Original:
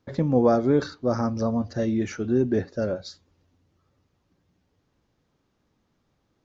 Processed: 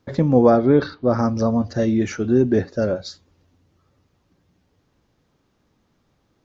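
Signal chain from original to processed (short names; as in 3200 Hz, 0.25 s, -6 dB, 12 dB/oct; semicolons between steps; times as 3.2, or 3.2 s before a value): 0.5–1.19 LPF 4200 Hz 24 dB/oct; gain +5.5 dB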